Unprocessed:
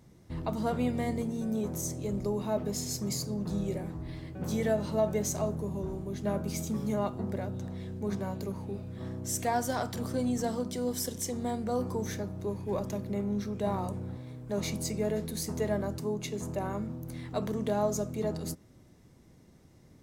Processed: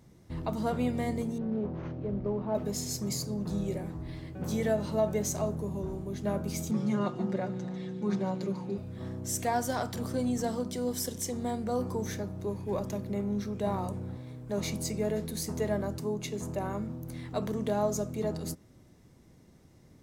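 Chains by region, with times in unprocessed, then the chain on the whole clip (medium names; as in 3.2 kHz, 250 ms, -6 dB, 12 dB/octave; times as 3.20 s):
1.38–2.55 s: CVSD coder 32 kbps + low-pass 1.3 kHz + loudspeaker Doppler distortion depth 0.15 ms
6.71–8.78 s: band-pass 120–5800 Hz + comb 5.6 ms, depth 91% + feedback echo behind a high-pass 146 ms, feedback 62%, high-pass 2.2 kHz, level -11 dB
whole clip: none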